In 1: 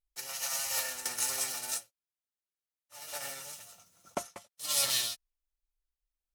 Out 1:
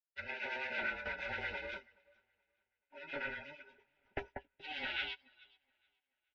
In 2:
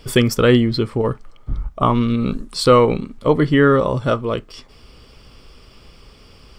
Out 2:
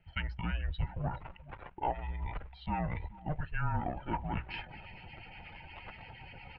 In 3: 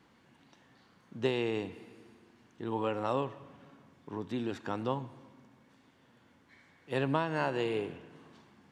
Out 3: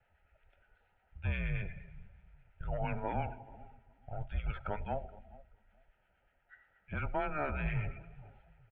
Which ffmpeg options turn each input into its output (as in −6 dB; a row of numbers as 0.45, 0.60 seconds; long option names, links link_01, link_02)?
-filter_complex "[0:a]asuperstop=centerf=1400:order=12:qfactor=5.6,areverse,acompressor=threshold=-30dB:ratio=16,areverse,aeval=exprs='(tanh(25.1*val(0)+0.1)-tanh(0.1))/25.1':channel_layout=same,acrossover=split=1400[link_01][link_02];[link_01]aeval=exprs='val(0)*(1-0.5/2+0.5/2*cos(2*PI*8.5*n/s))':channel_layout=same[link_03];[link_02]aeval=exprs='val(0)*(1-0.5/2-0.5/2*cos(2*PI*8.5*n/s))':channel_layout=same[link_04];[link_03][link_04]amix=inputs=2:normalize=0,bandreject=frequency=60:width_type=h:width=6,bandreject=frequency=120:width_type=h:width=6,bandreject=frequency=180:width_type=h:width=6,bandreject=frequency=240:width_type=h:width=6,bandreject=frequency=300:width_type=h:width=6,bandreject=frequency=360:width_type=h:width=6,aecho=1:1:426|852|1278:0.119|0.0428|0.0154,asubboost=boost=8:cutoff=61,acrusher=bits=6:mode=log:mix=0:aa=0.000001,afftdn=noise_reduction=13:noise_floor=-54,highpass=frequency=250:width_type=q:width=0.5412,highpass=frequency=250:width_type=q:width=1.307,lowpass=frequency=3000:width_type=q:width=0.5176,lowpass=frequency=3000:width_type=q:width=0.7071,lowpass=frequency=3000:width_type=q:width=1.932,afreqshift=-300,equalizer=frequency=250:width_type=o:width=1.5:gain=-11.5,volume=10dB"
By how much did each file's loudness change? −8.5, −21.5, −4.0 LU